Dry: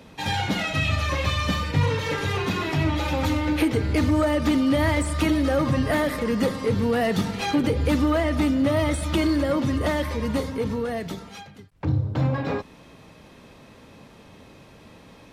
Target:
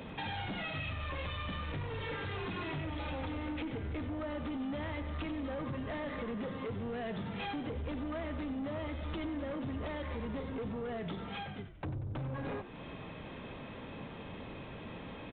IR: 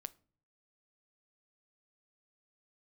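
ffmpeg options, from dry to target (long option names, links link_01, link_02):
-filter_complex "[0:a]acompressor=threshold=-36dB:ratio=6,aresample=8000,asoftclip=type=tanh:threshold=-37.5dB,aresample=44100,asplit=5[link_01][link_02][link_03][link_04][link_05];[link_02]adelay=93,afreqshift=-52,volume=-12dB[link_06];[link_03]adelay=186,afreqshift=-104,volume=-19.5dB[link_07];[link_04]adelay=279,afreqshift=-156,volume=-27.1dB[link_08];[link_05]adelay=372,afreqshift=-208,volume=-34.6dB[link_09];[link_01][link_06][link_07][link_08][link_09]amix=inputs=5:normalize=0,volume=3dB"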